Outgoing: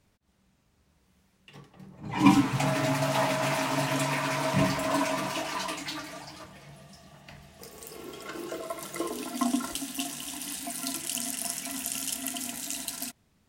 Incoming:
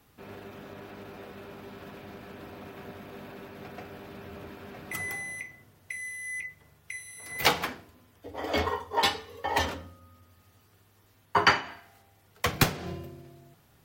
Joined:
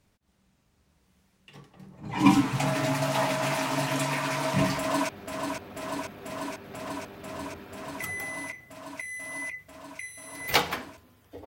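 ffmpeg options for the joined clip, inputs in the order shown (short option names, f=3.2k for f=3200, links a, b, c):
-filter_complex "[0:a]apad=whole_dur=11.46,atrim=end=11.46,atrim=end=5.092[a];[1:a]atrim=start=1.998:end=8.37[b];[a][b]acrossfade=d=0.004:c1=hsin:c2=hsin,asplit=2[c][d];[d]afade=t=in:st=4.78:d=0.01,afade=t=out:st=5.09:d=0.01,aecho=0:1:490|980|1470|1960|2450|2940|3430|3920|4410|4900|5390|5880:0.530884|0.451252|0.383564|0.326029|0.277125|0.235556|0.200223|0.170189|0.144661|0.122962|0.104518|0.0888399[e];[c][e]amix=inputs=2:normalize=0"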